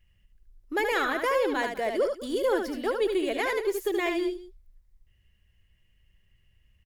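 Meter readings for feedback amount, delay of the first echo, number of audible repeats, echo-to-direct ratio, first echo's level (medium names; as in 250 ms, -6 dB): no regular repeats, 75 ms, 2, -5.0 dB, -5.5 dB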